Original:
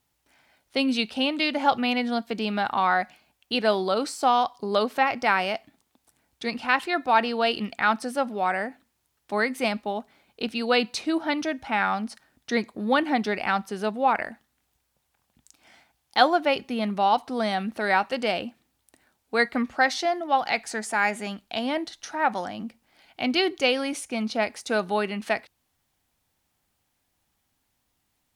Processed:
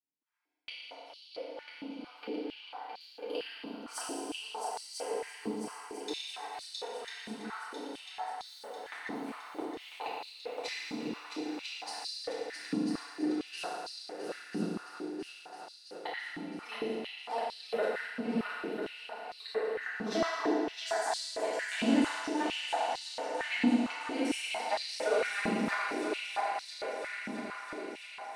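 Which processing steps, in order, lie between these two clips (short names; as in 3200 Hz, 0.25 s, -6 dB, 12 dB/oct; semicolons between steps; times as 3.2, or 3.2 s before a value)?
local time reversal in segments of 55 ms; Doppler pass-by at 8.37, 17 m/s, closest 19 m; gate -60 dBFS, range -25 dB; compressor 3:1, threshold -38 dBFS, peak gain reduction 14 dB; flipped gate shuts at -35 dBFS, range -27 dB; on a send: multi-head echo 0.332 s, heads second and third, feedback 68%, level -6 dB; on the sum: FDN reverb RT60 2 s, low-frequency decay 0.85×, high-frequency decay 0.9×, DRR -9.5 dB; stepped high-pass 4.4 Hz 220–4200 Hz; gain +6 dB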